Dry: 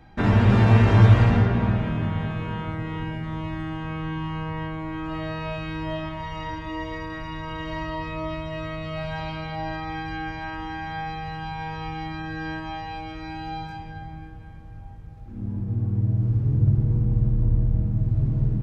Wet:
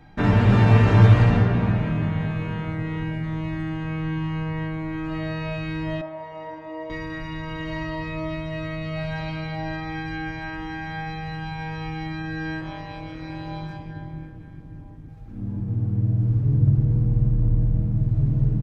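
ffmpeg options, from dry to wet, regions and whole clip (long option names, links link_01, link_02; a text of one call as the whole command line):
ffmpeg -i in.wav -filter_complex "[0:a]asettb=1/sr,asplit=3[link_01][link_02][link_03];[link_01]atrim=end=6.014[link_04];[link_02]atrim=start=6.01:end=6.9,asetpts=PTS-STARTPTS,afade=type=in:duration=0.004:curve=qsin,afade=type=out:start_time=0.886:duration=0.004:curve=qsin,acontrast=35,bandpass=frequency=640:width_type=q:width=2.4,aemphasis=mode=production:type=50fm[link_05];[link_03]atrim=start=6.896[link_06];[link_04][link_05]acrossfade=duration=0.004:curve1=hsin:curve2=qsin[link_07];[link_07][link_06]acrossfade=duration=0.004:curve1=qsin:curve2=hsin,asettb=1/sr,asplit=3[link_08][link_09][link_10];[link_08]atrim=end=12.614[link_11];[link_09]atrim=start=12.61:end=15.09,asetpts=PTS-STARTPTS,afade=type=in:duration=0.004:curve=qsin,afade=type=out:start_time=2.476:duration=0.004:curve=qsin,equalizer=frequency=160:width_type=o:width=1.9:gain=5.5,tremolo=f=200:d=0.75[link_12];[link_10]atrim=start=15.086[link_13];[link_11][link_12]acrossfade=duration=0.004:curve1=hsin:curve2=qsin[link_14];[link_14][link_13]acrossfade=duration=0.004:curve1=qsin:curve2=hsin,equalizer=frequency=190:width_type=o:width=0.67:gain=2.5,aecho=1:1:6.8:0.37" out.wav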